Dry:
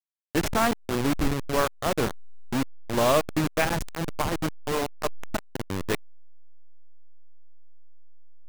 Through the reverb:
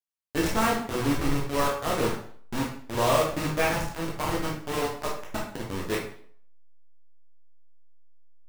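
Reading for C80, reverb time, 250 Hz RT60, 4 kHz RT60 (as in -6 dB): 9.0 dB, 0.55 s, 0.55 s, 0.50 s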